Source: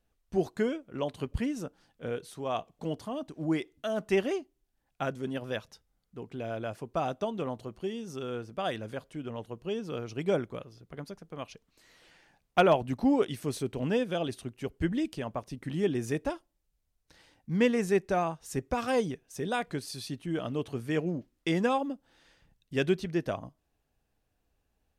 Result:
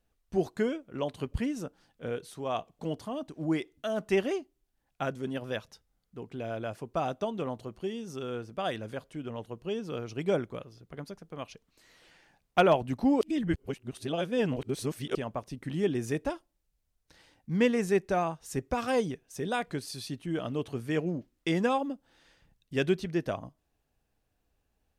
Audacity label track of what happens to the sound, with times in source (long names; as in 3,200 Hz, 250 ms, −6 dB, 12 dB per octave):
13.210000	15.150000	reverse